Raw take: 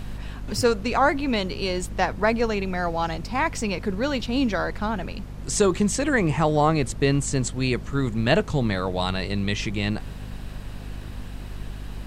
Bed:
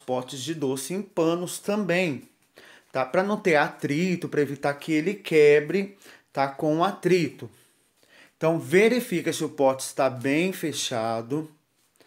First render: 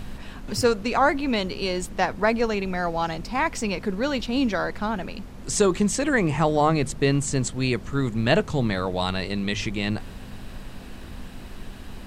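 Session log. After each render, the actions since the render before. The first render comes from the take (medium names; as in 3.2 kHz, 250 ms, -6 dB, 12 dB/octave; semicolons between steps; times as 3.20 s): de-hum 50 Hz, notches 3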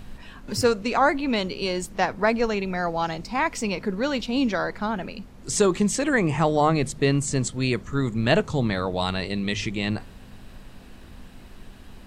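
noise print and reduce 6 dB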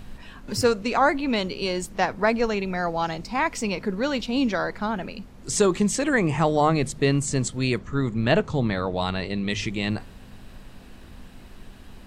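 7.78–9.50 s: treble shelf 6.5 kHz -11.5 dB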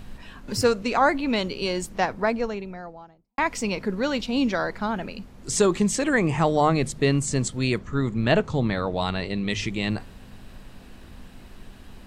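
1.84–3.38 s: studio fade out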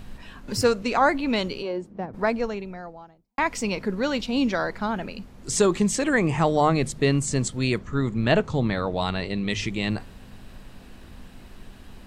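1.61–2.13 s: band-pass filter 730 Hz -> 140 Hz, Q 0.89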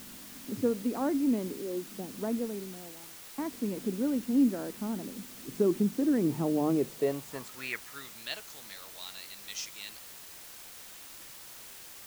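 band-pass sweep 280 Hz -> 6.2 kHz, 6.64–8.44 s; word length cut 8-bit, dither triangular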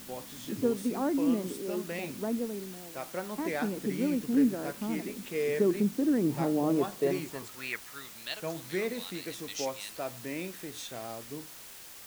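add bed -14 dB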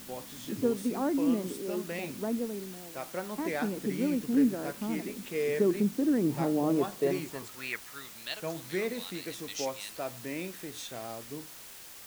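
no audible change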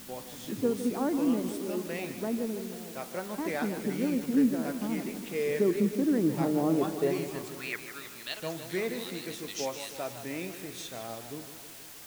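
modulated delay 157 ms, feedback 64%, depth 92 cents, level -11 dB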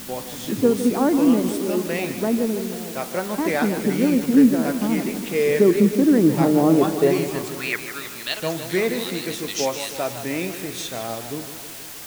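trim +10.5 dB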